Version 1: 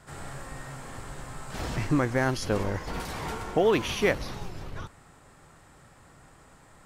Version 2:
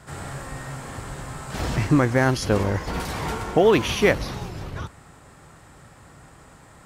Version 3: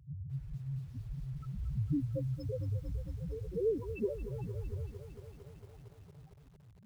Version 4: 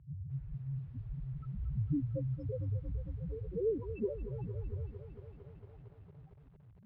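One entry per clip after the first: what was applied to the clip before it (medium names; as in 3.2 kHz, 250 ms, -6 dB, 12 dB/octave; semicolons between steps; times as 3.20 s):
high-pass 44 Hz; bass shelf 160 Hz +3.5 dB; trim +5.5 dB
compression 4:1, threshold -27 dBFS, peak gain reduction 12.5 dB; loudest bins only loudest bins 1; bit-crushed delay 227 ms, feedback 80%, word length 10-bit, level -12.5 dB; trim +3 dB
distance through air 460 m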